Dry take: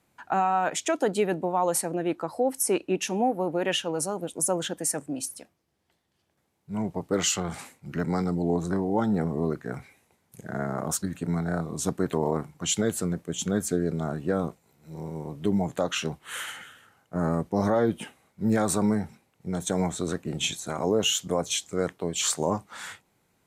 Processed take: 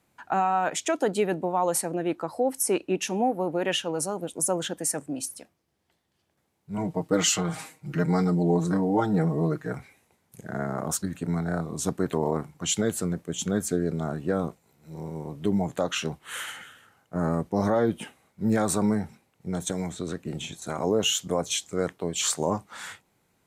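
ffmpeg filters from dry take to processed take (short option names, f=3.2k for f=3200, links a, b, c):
-filter_complex "[0:a]asettb=1/sr,asplit=3[a][b][c];[a]atrim=end=6.774[d];[b]atrim=start=6.77:end=9.73,asetpts=PTS-STARTPTS,afade=t=in:d=0.004:c=qsin,afade=t=out:st=2.956:d=0.004:c=qsin,aecho=1:1:6.4:0.86,atrim=end_sample=130536[e];[c]atrim=start=9.726[f];[d][e]acrossfade=d=0.004:c1=hsin:c2=qsin[g];[g][f]acrossfade=d=0.004:c1=qsin:c2=hsin,asettb=1/sr,asplit=3[h][i][j];[h]atrim=end=19.704[k];[i]atrim=start=19.7:end=20.62,asetpts=PTS-STARTPTS,afade=t=in:d=0.004:c=qsin,afade=t=out:st=0.916:d=0.004:c=qsin,acrossover=split=550|1600|4400[l][m][n][o];[l]acompressor=threshold=-28dB:ratio=3[p];[m]acompressor=threshold=-47dB:ratio=3[q];[n]acompressor=threshold=-43dB:ratio=3[r];[o]acompressor=threshold=-47dB:ratio=3[s];[p][q][r][s]amix=inputs=4:normalize=0[t];[j]atrim=start=20.616[u];[k][t]acrossfade=d=0.004:c1=hsin:c2=qsin[v];[v][u]acrossfade=d=0.004:c1=qsin:c2=hsin"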